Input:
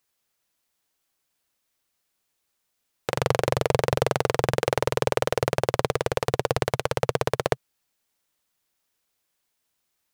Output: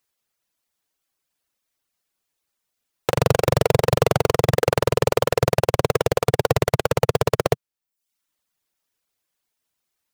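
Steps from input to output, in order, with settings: in parallel at -7 dB: wrapped overs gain 17.5 dB; on the sum: reverb removal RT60 0.66 s; sample leveller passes 2

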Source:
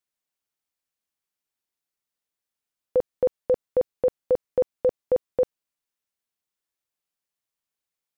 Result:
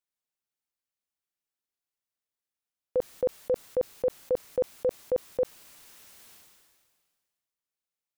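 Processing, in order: sustainer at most 33 dB/s; gain -5.5 dB

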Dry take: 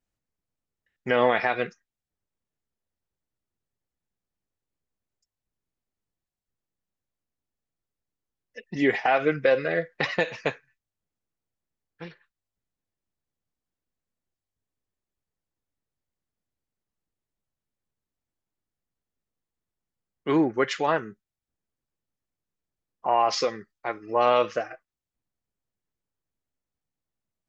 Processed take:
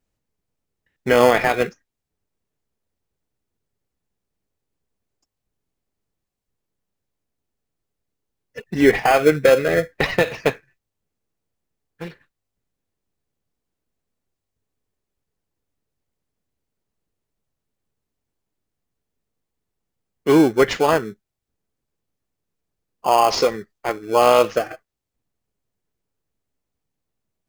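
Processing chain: bell 430 Hz +4.5 dB 0.2 oct; in parallel at -8 dB: sample-rate reducer 1900 Hz, jitter 0%; on the sum: gain +5 dB

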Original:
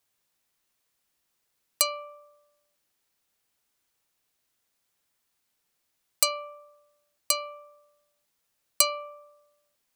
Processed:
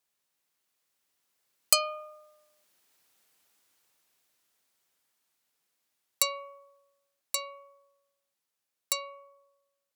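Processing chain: Doppler pass-by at 3.1, 17 m/s, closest 15 m; HPF 180 Hz 6 dB/oct; gain +7.5 dB

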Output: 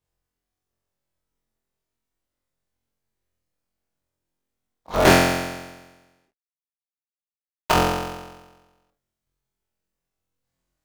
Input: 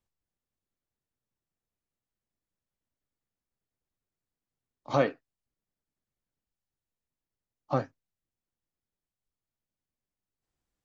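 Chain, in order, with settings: cycle switcher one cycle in 3, inverted; 5.05–7.72 fuzz box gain 52 dB, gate -54 dBFS; flutter echo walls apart 3.9 m, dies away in 1.2 s

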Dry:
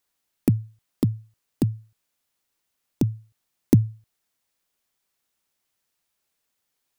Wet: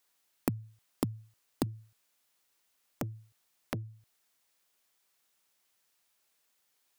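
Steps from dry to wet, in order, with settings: compressor 6:1, threshold -27 dBFS, peak gain reduction 15 dB; low shelf 290 Hz -9 dB; 1.66–3.84 core saturation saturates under 1300 Hz; gain +3 dB

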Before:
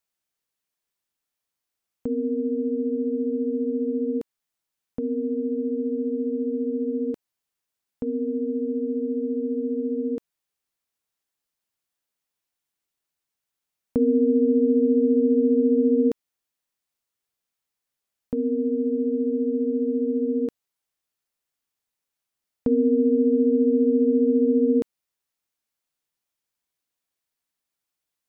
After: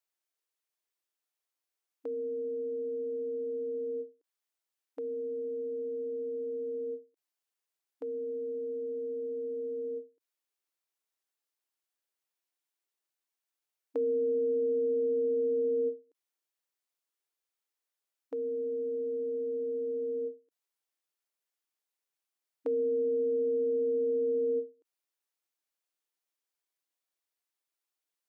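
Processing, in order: brick-wall FIR high-pass 280 Hz; ending taper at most 230 dB/s; gain -5 dB

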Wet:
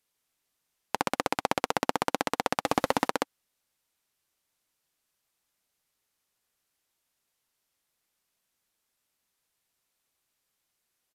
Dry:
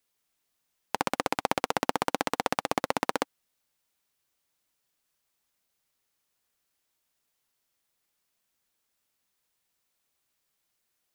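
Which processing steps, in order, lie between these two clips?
2.65–3.08 power-law curve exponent 0.7; downsampling 32000 Hz

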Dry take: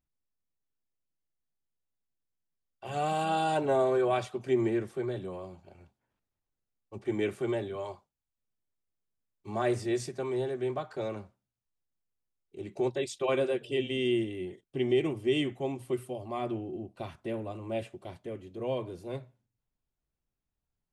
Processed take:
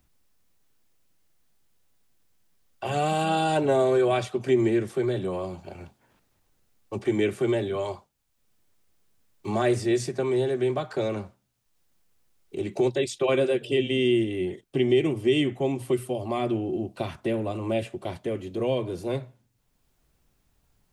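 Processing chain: dynamic EQ 970 Hz, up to -5 dB, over -41 dBFS, Q 1; three-band squash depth 40%; gain +7.5 dB

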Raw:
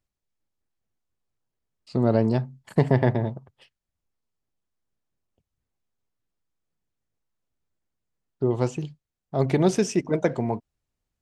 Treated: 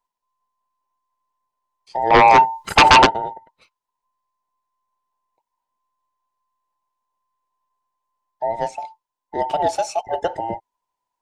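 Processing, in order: band inversion scrambler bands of 1000 Hz; 2.1–3.05 sine folder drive 11 dB -> 16 dB, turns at -5.5 dBFS

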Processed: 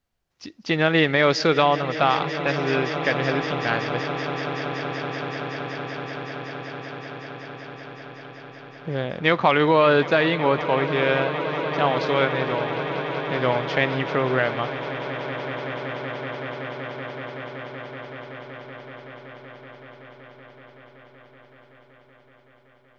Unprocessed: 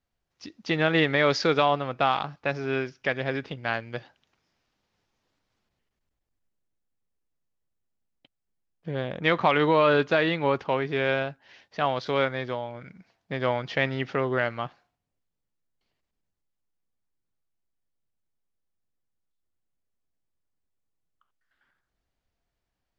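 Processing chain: swelling echo 0.189 s, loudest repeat 8, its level -16 dB; gain +3.5 dB

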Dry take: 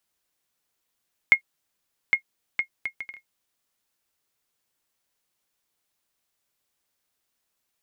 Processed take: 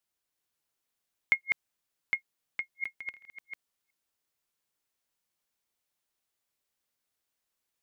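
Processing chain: reverse delay 0.355 s, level -3.5 dB; gain -7.5 dB

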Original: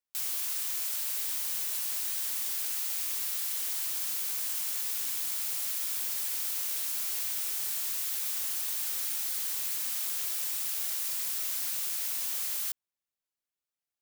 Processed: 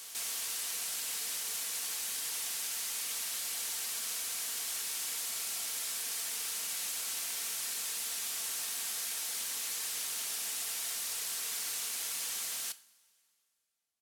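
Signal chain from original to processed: LPF 11000 Hz 12 dB/oct; comb 4.4 ms, depth 37%; on a send: reverse echo 0.273 s -9 dB; on the sum: two-slope reverb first 0.37 s, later 2.4 s, from -18 dB, DRR 12.5 dB

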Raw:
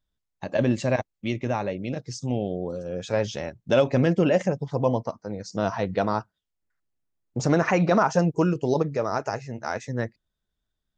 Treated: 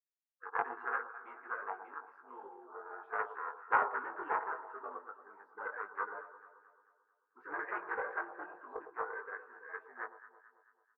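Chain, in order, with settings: Chebyshev band-pass 560–1400 Hz, order 4; spectral gate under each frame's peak -25 dB weak; doubler 20 ms -3.5 dB; echo with dull and thin repeats by turns 0.11 s, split 1100 Hz, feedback 69%, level -10 dB; Doppler distortion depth 0.11 ms; gain +12.5 dB

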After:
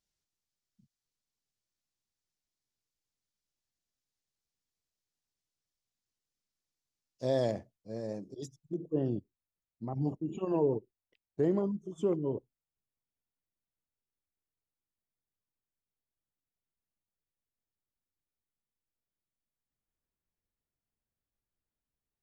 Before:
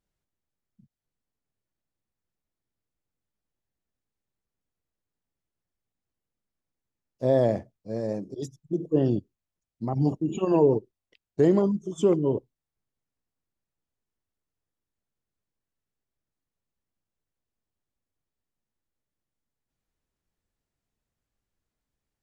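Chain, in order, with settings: bell 5400 Hz +14.5 dB 1.9 oct, from 7.51 s +4.5 dB, from 8.74 s -7 dB; gain -8.5 dB

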